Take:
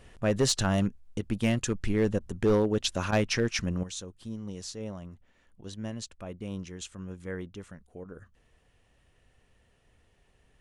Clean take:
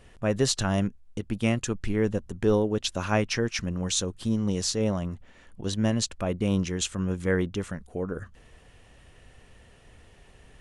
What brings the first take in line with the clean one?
clip repair -18 dBFS; interpolate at 2.19/3.11/8.04 s, 12 ms; trim 0 dB, from 3.83 s +12 dB

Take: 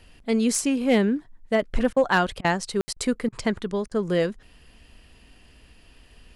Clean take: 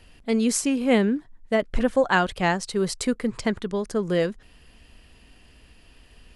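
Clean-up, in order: clip repair -11.5 dBFS; room tone fill 2.81–2.88 s; interpolate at 1.93/2.41/2.93/3.29/3.88 s, 33 ms

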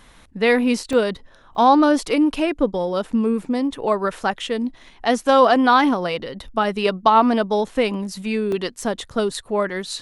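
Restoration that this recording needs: interpolate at 0.93/1.55/8.52/8.82 s, 2.2 ms

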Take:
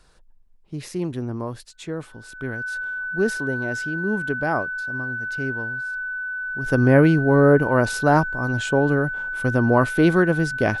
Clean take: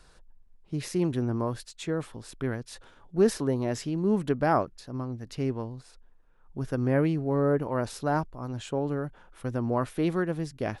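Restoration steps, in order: band-stop 1.5 kHz, Q 30; trim 0 dB, from 6.66 s -10 dB

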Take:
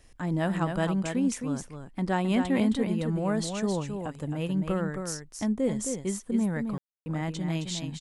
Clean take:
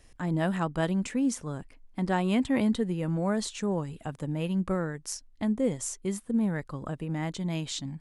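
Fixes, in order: room tone fill 6.78–7.06 s; inverse comb 266 ms -6.5 dB

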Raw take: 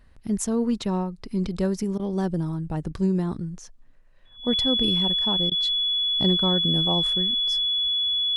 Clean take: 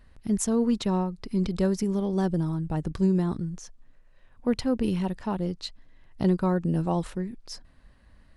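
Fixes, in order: band-stop 3.4 kHz, Q 30; interpolate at 1.98/5.50 s, 14 ms

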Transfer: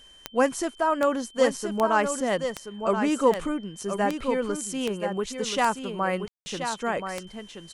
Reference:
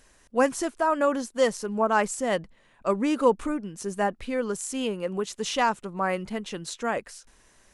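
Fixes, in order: de-click; band-stop 3.1 kHz, Q 30; room tone fill 6.28–6.46 s; inverse comb 1028 ms -7.5 dB

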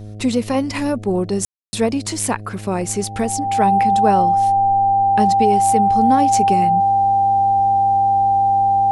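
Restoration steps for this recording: de-hum 104.8 Hz, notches 7; band-stop 790 Hz, Q 30; room tone fill 1.45–1.73 s

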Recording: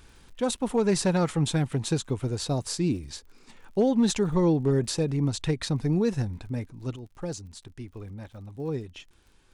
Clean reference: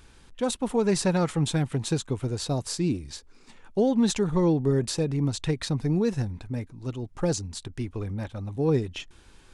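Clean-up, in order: clip repair -15 dBFS; de-click; trim 0 dB, from 6.96 s +8 dB

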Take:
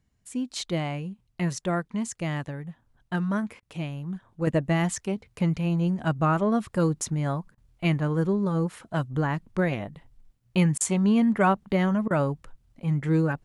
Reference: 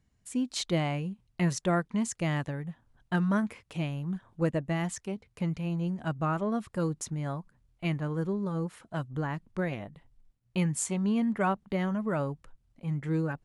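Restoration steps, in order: interpolate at 3.60/7.55/10.78/12.08 s, 25 ms; gain correction -6.5 dB, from 4.47 s

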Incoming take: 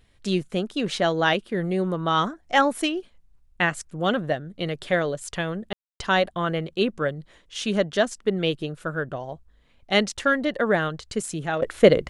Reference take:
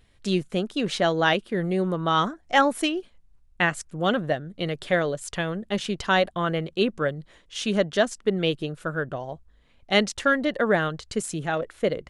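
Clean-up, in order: room tone fill 5.73–6.00 s; trim 0 dB, from 11.62 s -10 dB

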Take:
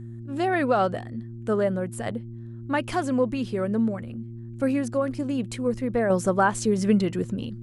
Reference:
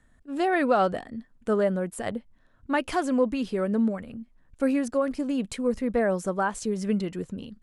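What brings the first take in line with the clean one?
de-hum 115.8 Hz, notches 3; gain correction -5.5 dB, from 6.10 s

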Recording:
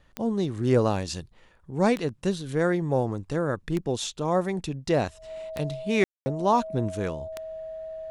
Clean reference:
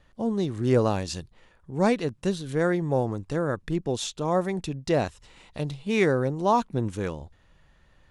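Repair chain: de-click; band-stop 640 Hz, Q 30; room tone fill 6.04–6.26 s

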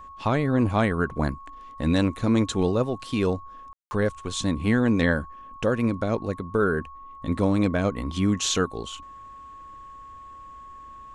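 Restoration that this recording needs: band-stop 1.1 kHz, Q 30; room tone fill 3.73–3.91 s

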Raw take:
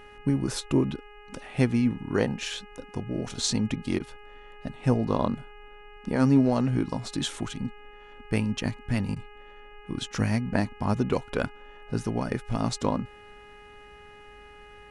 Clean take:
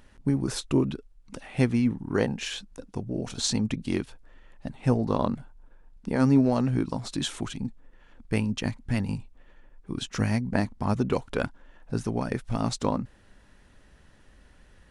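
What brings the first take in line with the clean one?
de-hum 414.8 Hz, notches 7; interpolate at 3.99/9.15 s, 11 ms

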